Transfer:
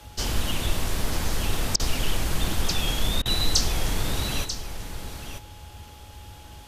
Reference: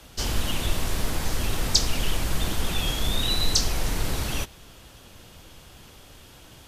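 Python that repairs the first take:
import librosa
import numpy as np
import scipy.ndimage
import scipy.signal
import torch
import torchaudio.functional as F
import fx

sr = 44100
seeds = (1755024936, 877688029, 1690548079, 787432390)

y = fx.notch(x, sr, hz=840.0, q=30.0)
y = fx.fix_interpolate(y, sr, at_s=(1.76, 3.22), length_ms=35.0)
y = fx.noise_reduce(y, sr, print_start_s=5.65, print_end_s=6.15, reduce_db=6.0)
y = fx.fix_echo_inverse(y, sr, delay_ms=940, level_db=-9.5)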